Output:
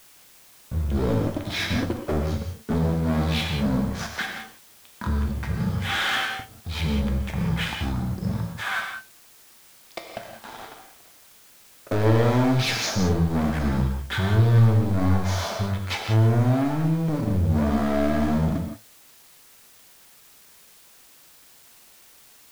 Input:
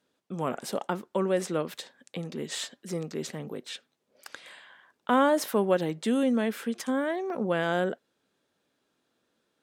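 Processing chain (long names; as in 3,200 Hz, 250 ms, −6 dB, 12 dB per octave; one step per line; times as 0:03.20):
wrong playback speed 78 rpm record played at 33 rpm
leveller curve on the samples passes 5
notch filter 2,800 Hz, Q 16
tuned comb filter 110 Hz, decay 0.25 s, harmonics all, mix 60%
noise gate −39 dBFS, range −11 dB
reverb whose tail is shaped and stops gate 210 ms flat, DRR 2.5 dB
in parallel at −11 dB: bit-depth reduction 6 bits, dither triangular
on the sum: level −5 dB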